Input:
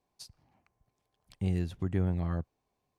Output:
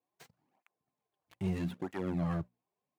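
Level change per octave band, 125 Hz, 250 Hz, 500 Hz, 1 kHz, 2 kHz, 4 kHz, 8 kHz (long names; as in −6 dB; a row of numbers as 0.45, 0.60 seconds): −5.5 dB, −1.0 dB, −1.0 dB, +2.5 dB, +1.0 dB, −4.0 dB, can't be measured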